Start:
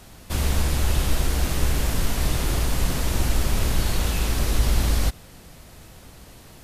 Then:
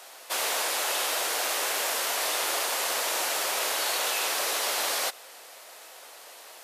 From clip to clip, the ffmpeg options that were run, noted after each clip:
ffmpeg -i in.wav -af "highpass=frequency=520:width=0.5412,highpass=frequency=520:width=1.3066,volume=3.5dB" out.wav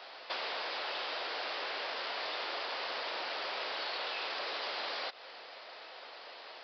ffmpeg -i in.wav -af "acompressor=threshold=-33dB:ratio=6,aresample=11025,asoftclip=type=tanh:threshold=-23dB,aresample=44100" out.wav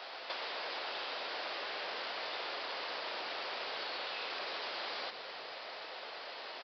ffmpeg -i in.wav -filter_complex "[0:a]acompressor=threshold=-42dB:ratio=4,asplit=2[link_01][link_02];[link_02]asplit=7[link_03][link_04][link_05][link_06][link_07][link_08][link_09];[link_03]adelay=119,afreqshift=-45,volume=-9dB[link_10];[link_04]adelay=238,afreqshift=-90,volume=-13.6dB[link_11];[link_05]adelay=357,afreqshift=-135,volume=-18.2dB[link_12];[link_06]adelay=476,afreqshift=-180,volume=-22.7dB[link_13];[link_07]adelay=595,afreqshift=-225,volume=-27.3dB[link_14];[link_08]adelay=714,afreqshift=-270,volume=-31.9dB[link_15];[link_09]adelay=833,afreqshift=-315,volume=-36.5dB[link_16];[link_10][link_11][link_12][link_13][link_14][link_15][link_16]amix=inputs=7:normalize=0[link_17];[link_01][link_17]amix=inputs=2:normalize=0,volume=3dB" out.wav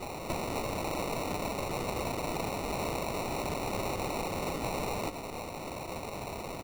ffmpeg -i in.wav -af "acrusher=samples=27:mix=1:aa=0.000001,volume=6.5dB" out.wav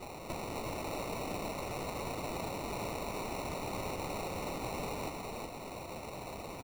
ffmpeg -i in.wav -af "aecho=1:1:367:0.631,volume=-6dB" out.wav

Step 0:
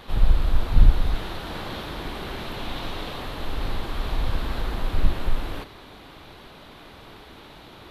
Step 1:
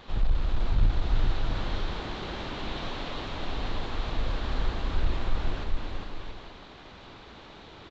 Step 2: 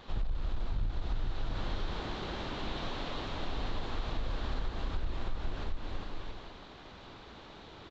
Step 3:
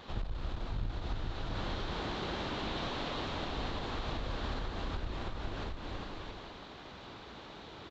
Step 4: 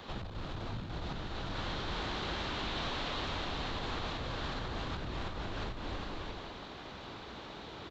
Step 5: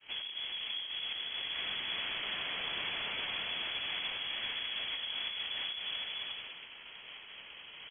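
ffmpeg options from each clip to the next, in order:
ffmpeg -i in.wav -af "aresample=16000,asoftclip=type=tanh:threshold=-10.5dB,aresample=44100,aecho=1:1:410|676.5|849.7|962.3|1036:0.631|0.398|0.251|0.158|0.1,volume=-4.5dB" out.wav
ffmpeg -i in.wav -af "equalizer=frequency=2300:width_type=o:width=0.77:gain=-2,acompressor=threshold=-26dB:ratio=6,volume=-2.5dB" out.wav
ffmpeg -i in.wav -af "highpass=frequency=63:poles=1,volume=2dB" out.wav
ffmpeg -i in.wav -filter_complex "[0:a]acrossover=split=100|1000|2000[link_01][link_02][link_03][link_04];[link_01]aeval=exprs='0.0112*(abs(mod(val(0)/0.0112+3,4)-2)-1)':channel_layout=same[link_05];[link_02]alimiter=level_in=14dB:limit=-24dB:level=0:latency=1,volume=-14dB[link_06];[link_05][link_06][link_03][link_04]amix=inputs=4:normalize=0,volume=2.5dB" out.wav
ffmpeg -i in.wav -af "lowpass=frequency=2900:width_type=q:width=0.5098,lowpass=frequency=2900:width_type=q:width=0.6013,lowpass=frequency=2900:width_type=q:width=0.9,lowpass=frequency=2900:width_type=q:width=2.563,afreqshift=-3400,agate=range=-33dB:threshold=-43dB:ratio=3:detection=peak" out.wav

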